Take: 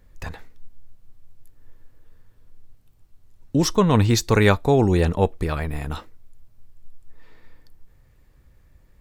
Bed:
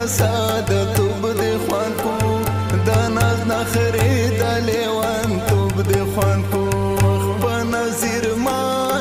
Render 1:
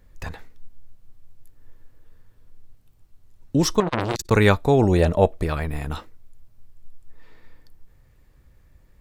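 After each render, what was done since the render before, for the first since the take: 3.80–4.31 s: transformer saturation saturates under 1.9 kHz; 4.83–5.46 s: peaking EQ 620 Hz +14 dB 0.26 oct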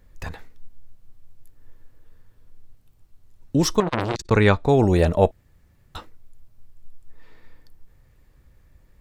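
4.09–4.69 s: distance through air 72 m; 5.31–5.95 s: room tone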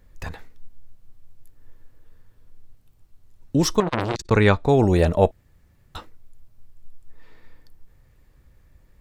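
no audible change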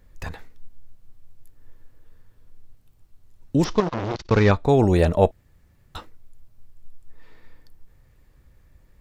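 3.64–4.51 s: CVSD coder 32 kbps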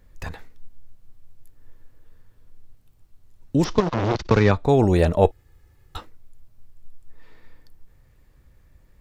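3.78–4.65 s: three bands compressed up and down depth 70%; 5.24–5.98 s: comb 2.4 ms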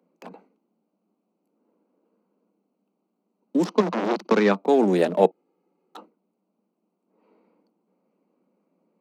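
local Wiener filter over 25 samples; steep high-pass 180 Hz 96 dB/octave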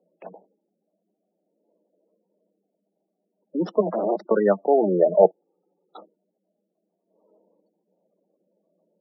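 spectral gate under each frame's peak -15 dB strong; graphic EQ with 31 bands 250 Hz -12 dB, 630 Hz +10 dB, 1 kHz -7 dB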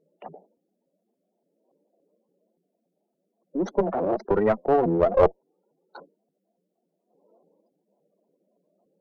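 single-diode clipper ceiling -17 dBFS; vibrato with a chosen wave saw up 3.5 Hz, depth 250 cents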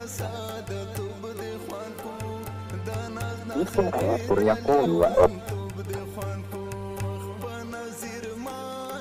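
add bed -15.5 dB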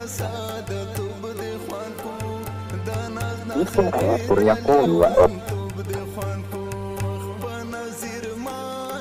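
trim +4.5 dB; peak limiter -1 dBFS, peak gain reduction 3 dB

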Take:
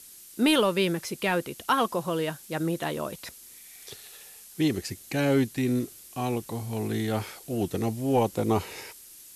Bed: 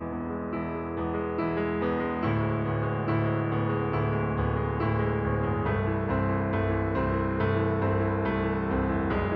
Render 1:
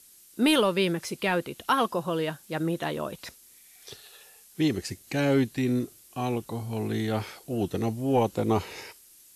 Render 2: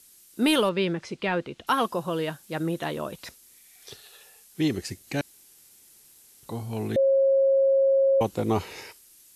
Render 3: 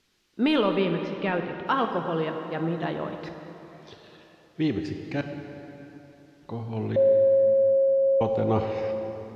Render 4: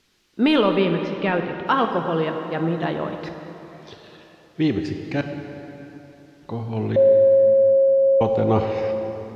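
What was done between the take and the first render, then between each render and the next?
noise print and reduce 6 dB
0.69–1.67 s: distance through air 120 m; 5.21–6.43 s: room tone; 6.96–8.21 s: bleep 542 Hz -17 dBFS
distance through air 230 m; plate-style reverb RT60 3.5 s, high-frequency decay 0.65×, DRR 5 dB
trim +5 dB

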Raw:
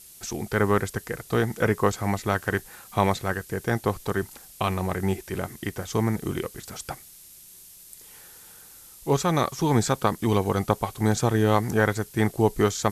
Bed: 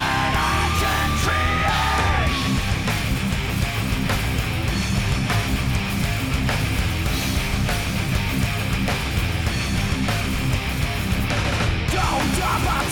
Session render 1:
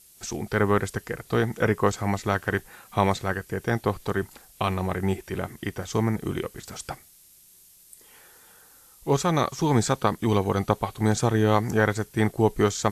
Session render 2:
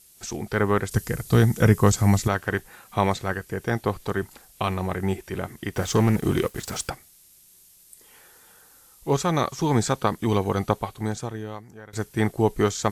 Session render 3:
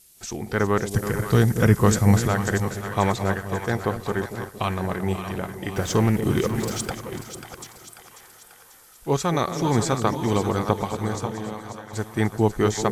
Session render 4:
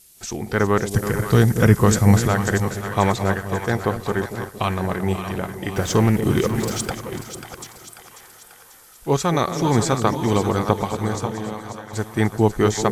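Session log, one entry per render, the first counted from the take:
noise print and reduce 6 dB
0.91–2.28 s: tone controls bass +11 dB, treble +11 dB; 5.74–6.90 s: waveshaping leveller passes 2; 10.72–11.93 s: fade out quadratic, to -23.5 dB
chunks repeated in reverse 451 ms, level -10.5 dB; two-band feedback delay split 700 Hz, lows 231 ms, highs 540 ms, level -9.5 dB
trim +3 dB; peak limiter -1 dBFS, peak gain reduction 2 dB

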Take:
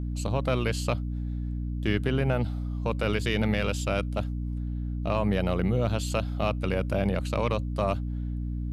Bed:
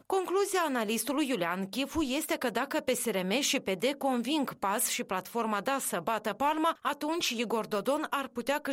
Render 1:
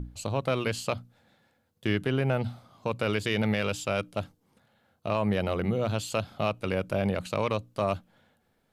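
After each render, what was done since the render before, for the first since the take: hum notches 60/120/180/240/300 Hz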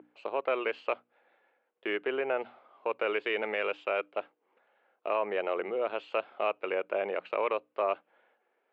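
Chebyshev band-pass 380–2600 Hz, order 3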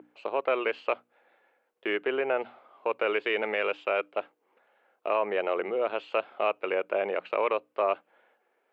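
trim +3 dB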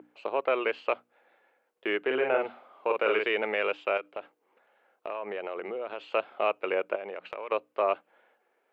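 2.06–3.26 s: doubling 46 ms -3 dB; 3.97–6.01 s: compression 4:1, threshold -32 dBFS; 6.95–7.52 s: compression, threshold -34 dBFS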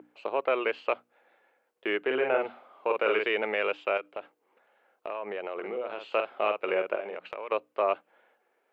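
5.53–7.17 s: doubling 48 ms -6.5 dB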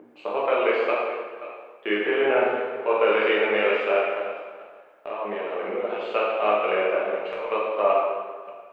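chunks repeated in reverse 293 ms, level -14 dB; plate-style reverb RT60 1.5 s, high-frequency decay 0.75×, DRR -5 dB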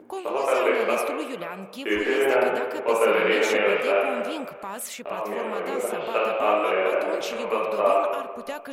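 add bed -4.5 dB

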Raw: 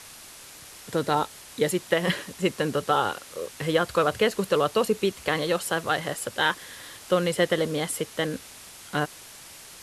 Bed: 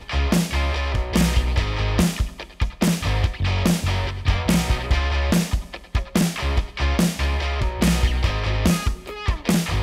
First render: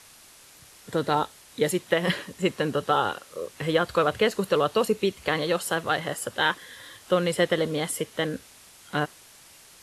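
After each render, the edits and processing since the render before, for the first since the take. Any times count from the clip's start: noise print and reduce 6 dB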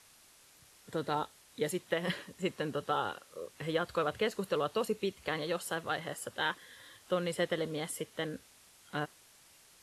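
trim -9.5 dB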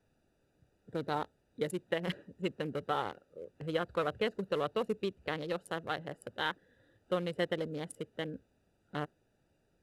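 local Wiener filter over 41 samples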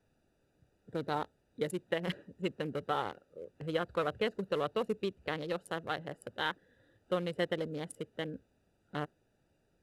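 no audible change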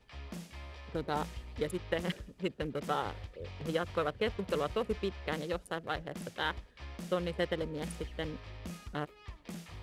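add bed -25 dB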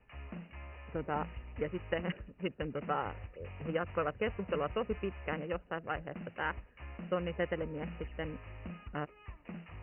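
Chebyshev low-pass 2.9 kHz, order 10; peaking EQ 380 Hz -2.5 dB

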